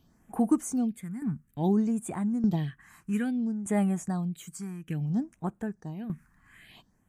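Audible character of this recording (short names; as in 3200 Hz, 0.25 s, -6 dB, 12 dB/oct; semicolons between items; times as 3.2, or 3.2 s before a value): phasing stages 4, 0.59 Hz, lowest notch 550–5000 Hz; tremolo saw down 0.82 Hz, depth 75%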